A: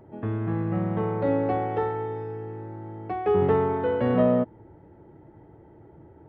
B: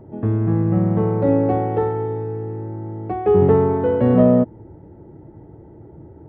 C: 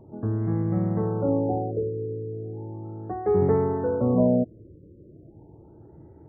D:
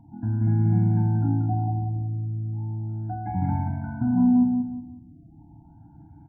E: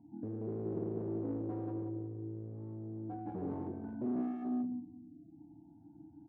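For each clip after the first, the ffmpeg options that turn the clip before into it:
-af "tiltshelf=f=820:g=6.5,volume=1.5"
-af "afftfilt=real='re*lt(b*sr/1024,580*pow(2400/580,0.5+0.5*sin(2*PI*0.36*pts/sr)))':imag='im*lt(b*sr/1024,580*pow(2400/580,0.5+0.5*sin(2*PI*0.36*pts/sr)))':win_size=1024:overlap=0.75,volume=0.447"
-filter_complex "[0:a]asplit=2[s0][s1];[s1]adelay=45,volume=0.282[s2];[s0][s2]amix=inputs=2:normalize=0,asplit=2[s3][s4];[s4]aecho=0:1:182|364|546|728:0.631|0.208|0.0687|0.0227[s5];[s3][s5]amix=inputs=2:normalize=0,afftfilt=real='re*eq(mod(floor(b*sr/1024/340),2),0)':imag='im*eq(mod(floor(b*sr/1024/340),2),0)':win_size=1024:overlap=0.75"
-af "asoftclip=type=hard:threshold=0.0422,flanger=delay=9.7:depth=1.2:regen=-80:speed=0.65:shape=triangular,bandpass=f=350:t=q:w=3.1:csg=0,volume=2.24"

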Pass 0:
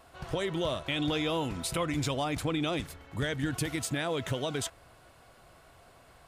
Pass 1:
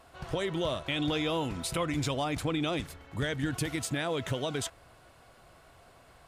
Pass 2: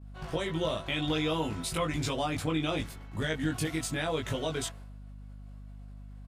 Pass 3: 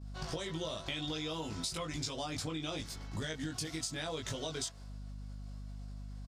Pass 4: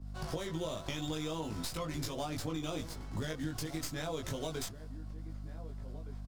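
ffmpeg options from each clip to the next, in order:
-af "highshelf=f=12000:g=-3.5"
-filter_complex "[0:a]agate=range=0.0224:threshold=0.00398:ratio=3:detection=peak,aeval=exprs='val(0)+0.00447*(sin(2*PI*50*n/s)+sin(2*PI*2*50*n/s)/2+sin(2*PI*3*50*n/s)/3+sin(2*PI*4*50*n/s)/4+sin(2*PI*5*50*n/s)/5)':c=same,asplit=2[s0][s1];[s1]adelay=19,volume=0.794[s2];[s0][s2]amix=inputs=2:normalize=0,volume=0.794"
-af "firequalizer=gain_entry='entry(2600,0);entry(5000,14);entry(11000,0)':delay=0.05:min_phase=1,acompressor=threshold=0.0141:ratio=6,volume=1.12"
-filter_complex "[0:a]acrossover=split=120|1500[s0][s1][s2];[s2]aeval=exprs='max(val(0),0)':c=same[s3];[s0][s1][s3]amix=inputs=3:normalize=0,asplit=2[s4][s5];[s5]adelay=1516,volume=0.224,highshelf=f=4000:g=-34.1[s6];[s4][s6]amix=inputs=2:normalize=0,volume=1.19"

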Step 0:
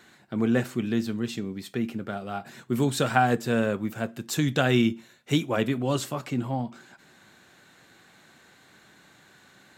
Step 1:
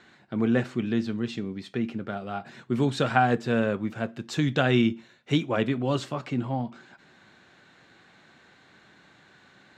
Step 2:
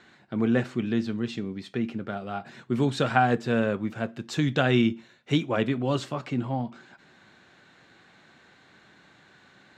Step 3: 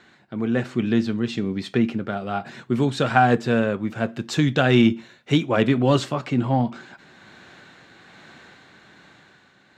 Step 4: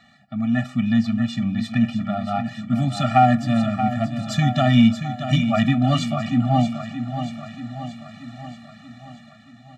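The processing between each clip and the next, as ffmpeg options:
-af "lowpass=4600"
-af anull
-filter_complex "[0:a]dynaudnorm=f=140:g=13:m=2.37,tremolo=f=1.2:d=0.31,asplit=2[s0][s1];[s1]asoftclip=type=hard:threshold=0.211,volume=0.282[s2];[s0][s2]amix=inputs=2:normalize=0"
-filter_complex "[0:a]asplit=2[s0][s1];[s1]aecho=0:1:630|1260|1890|2520|3150|3780|4410:0.335|0.191|0.109|0.062|0.0354|0.0202|0.0115[s2];[s0][s2]amix=inputs=2:normalize=0,afftfilt=real='re*eq(mod(floor(b*sr/1024/280),2),0)':imag='im*eq(mod(floor(b*sr/1024/280),2),0)':win_size=1024:overlap=0.75,volume=1.41"

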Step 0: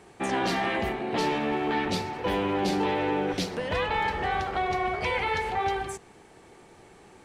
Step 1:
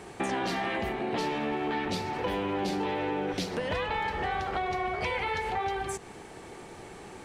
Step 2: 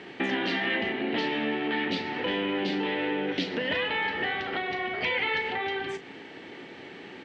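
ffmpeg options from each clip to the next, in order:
-af "acompressor=threshold=0.0141:ratio=4,volume=2.24"
-filter_complex "[0:a]highpass=160,equalizer=f=270:t=q:w=4:g=8,equalizer=f=750:t=q:w=4:g=-4,equalizer=f=1100:t=q:w=4:g=-6,equalizer=f=1900:t=q:w=4:g=7,equalizer=f=3000:t=q:w=4:g=6,lowpass=f=3900:w=0.5412,lowpass=f=3900:w=1.3066,crystalizer=i=2:c=0,asplit=2[s0][s1];[s1]adelay=36,volume=0.251[s2];[s0][s2]amix=inputs=2:normalize=0"

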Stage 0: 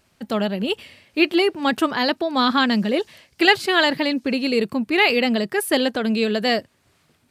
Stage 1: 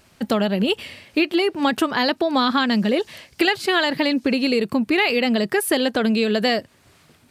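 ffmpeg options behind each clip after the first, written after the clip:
-af "acompressor=threshold=0.0631:ratio=6,volume=2.37"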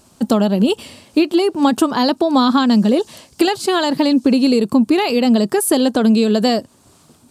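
-af "equalizer=f=250:t=o:w=1:g=6,equalizer=f=1000:t=o:w=1:g=5,equalizer=f=2000:t=o:w=1:g=-11,equalizer=f=8000:t=o:w=1:g=8,volume=1.26"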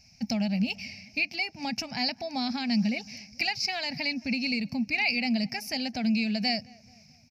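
-filter_complex "[0:a]firequalizer=gain_entry='entry(140,0);entry(240,-9);entry(350,-30);entry(740,-6);entry(1100,-27);entry(2300,13);entry(3300,-16);entry(5300,13);entry(8100,-27);entry(14000,-11)':delay=0.05:min_phase=1,asplit=2[s0][s1];[s1]adelay=217,lowpass=f=1800:p=1,volume=0.0708,asplit=2[s2][s3];[s3]adelay=217,lowpass=f=1800:p=1,volume=0.52,asplit=2[s4][s5];[s5]adelay=217,lowpass=f=1800:p=1,volume=0.52[s6];[s0][s2][s4][s6]amix=inputs=4:normalize=0,volume=0.531"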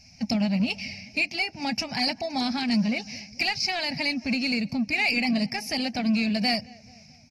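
-filter_complex "[0:a]asplit=2[s0][s1];[s1]asoftclip=type=tanh:threshold=0.0335,volume=0.668[s2];[s0][s2]amix=inputs=2:normalize=0" -ar 48000 -c:a aac -b:a 32k

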